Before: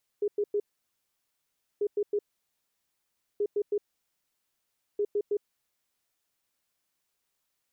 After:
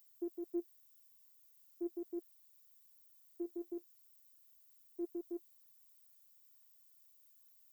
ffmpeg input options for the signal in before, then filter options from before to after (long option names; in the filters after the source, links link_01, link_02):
-f lavfi -i "aevalsrc='0.0631*sin(2*PI*412*t)*clip(min(mod(mod(t,1.59),0.16),0.06-mod(mod(t,1.59),0.16))/0.005,0,1)*lt(mod(t,1.59),0.48)':duration=6.36:sample_rate=44100"
-af "flanger=delay=1.1:depth=8.2:regen=54:speed=0.41:shape=triangular,aemphasis=mode=production:type=riaa,afftfilt=real='hypot(re,im)*cos(PI*b)':imag='0':win_size=512:overlap=0.75"